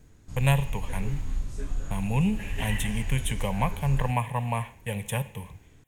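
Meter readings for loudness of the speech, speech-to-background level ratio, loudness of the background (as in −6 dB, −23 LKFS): −29.5 LKFS, 8.0 dB, −37.5 LKFS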